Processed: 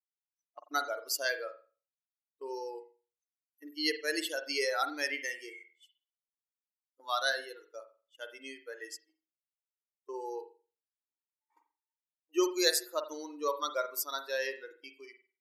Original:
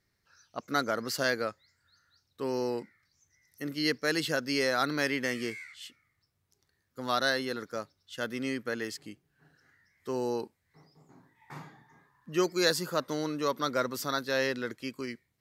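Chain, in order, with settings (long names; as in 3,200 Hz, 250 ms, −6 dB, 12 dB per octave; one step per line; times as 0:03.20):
spectral dynamics exaggerated over time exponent 2
noise gate −52 dBFS, range −14 dB
linear-phase brick-wall band-pass 290–14,000 Hz
high-shelf EQ 6,100 Hz +11.5 dB
convolution reverb, pre-delay 44 ms, DRR 8 dB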